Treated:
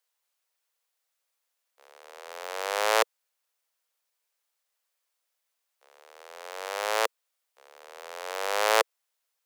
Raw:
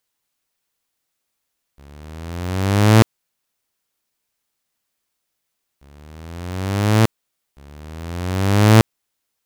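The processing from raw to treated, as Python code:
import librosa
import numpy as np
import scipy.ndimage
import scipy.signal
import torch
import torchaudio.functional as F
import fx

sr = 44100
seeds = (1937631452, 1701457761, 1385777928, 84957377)

y = scipy.signal.sosfilt(scipy.signal.ellip(4, 1.0, 60, 480.0, 'highpass', fs=sr, output='sos'), x)
y = y * librosa.db_to_amplitude(-3.5)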